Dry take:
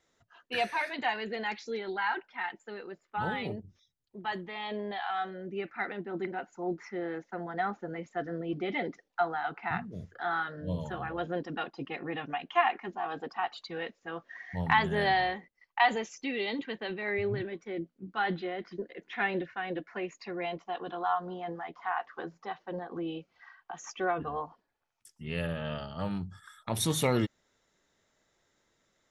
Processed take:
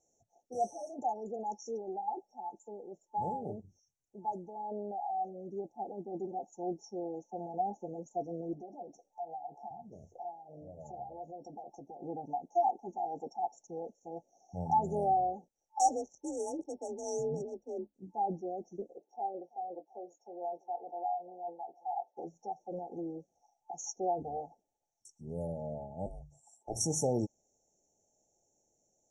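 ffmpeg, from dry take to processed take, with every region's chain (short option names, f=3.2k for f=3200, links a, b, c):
-filter_complex "[0:a]asettb=1/sr,asplit=3[a][b][c];[a]atrim=end=8.534[d];[b]atrim=start=8.53:end=12.02,asetpts=PTS-STARTPTS,afade=t=in:d=0.004:c=qsin,afade=t=out:st=3.486:d=0.004:c=qsin,acompressor=threshold=-44dB:ratio=8:attack=3.2:release=140:knee=1:detection=peak,equalizer=f=680:t=o:w=0.63:g=9,asplit=2[e][f];[f]adelay=14,volume=-8dB[g];[e][g]amix=inputs=2:normalize=0,atrim=end_sample=153909[h];[c]atrim=start=12.016[i];[d][h]acrossfade=d=0.004:c1=hsin:c2=qsin[j];[j][i]acrossfade=d=0.004:c1=qsin:c2=hsin,asettb=1/sr,asplit=3[k][l][m];[k]atrim=end=15.794[n];[l]atrim=start=15.79:end=17.94,asetpts=PTS-STARTPTS,afade=t=in:d=0.004:c=qsin,afade=t=out:st=2.146:d=0.004:c=qsin,aemphasis=mode=production:type=75kf,adynamicsmooth=sensitivity=5:basefreq=800,afreqshift=38[o];[m]atrim=start=17.936[p];[n][o]acrossfade=d=0.004:c1=hsin:c2=qsin[q];[q][p]acrossfade=d=0.004:c1=qsin:c2=hsin,asettb=1/sr,asplit=3[r][s][t];[r]atrim=end=18.984[u];[s]atrim=start=18.98:end=22.17,asetpts=PTS-STARTPTS,afade=t=in:d=0.004:c=qsin,afade=t=out:st=3.186:d=0.004:c=qsin,highpass=560,lowpass=2.6k,asplit=2[v][w];[w]adelay=23,volume=-11.5dB[x];[v][x]amix=inputs=2:normalize=0,atrim=end_sample=140679,aecho=1:1:331:0.0708,atrim=end_sample=140679[y];[t]atrim=start=22.166[z];[u][y]acrossfade=d=0.004:c1=hsin:c2=qsin[aa];[aa][z]acrossfade=d=0.004:c1=qsin:c2=hsin,asettb=1/sr,asplit=3[ab][ac][ad];[ab]atrim=end=26.064[ae];[ac]atrim=start=26.06:end=26.76,asetpts=PTS-STARTPTS,afade=t=in:d=0.004:c=qsin,afade=t=out:st=0.696:d=0.004:c=qsin,lowshelf=f=270:g=-10.5,afreqshift=-240[af];[ad]atrim=start=26.756[ag];[ae][af]acrossfade=d=0.004:c1=hsin:c2=qsin[ah];[ah][ag]acrossfade=d=0.004:c1=qsin:c2=hsin,lowpass=f=7.4k:w=0.5412,lowpass=f=7.4k:w=1.3066,afftfilt=real='re*(1-between(b*sr/4096,880,5500))':imag='im*(1-between(b*sr/4096,880,5500))':win_size=4096:overlap=0.75,tiltshelf=f=760:g=-6"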